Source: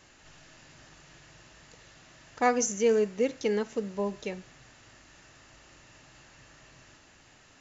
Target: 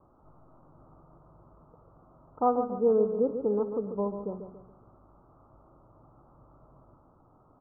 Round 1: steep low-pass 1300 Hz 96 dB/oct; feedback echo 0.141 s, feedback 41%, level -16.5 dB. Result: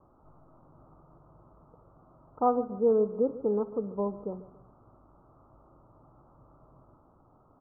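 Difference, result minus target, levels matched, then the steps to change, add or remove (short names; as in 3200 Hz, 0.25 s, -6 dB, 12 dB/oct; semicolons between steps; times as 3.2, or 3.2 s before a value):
echo-to-direct -8 dB
change: feedback echo 0.141 s, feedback 41%, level -8.5 dB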